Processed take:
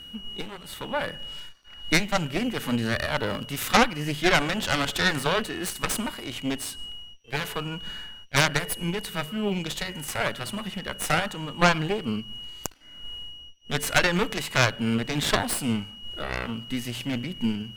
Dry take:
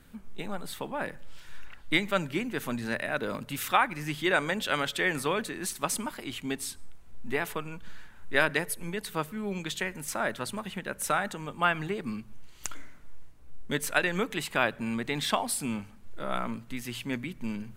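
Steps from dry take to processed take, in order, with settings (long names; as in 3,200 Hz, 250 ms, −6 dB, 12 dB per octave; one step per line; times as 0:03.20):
steady tone 2,900 Hz −48 dBFS
harmonic generator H 4 −20 dB, 6 −7 dB, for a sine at −7 dBFS
harmonic and percussive parts rebalanced harmonic +7 dB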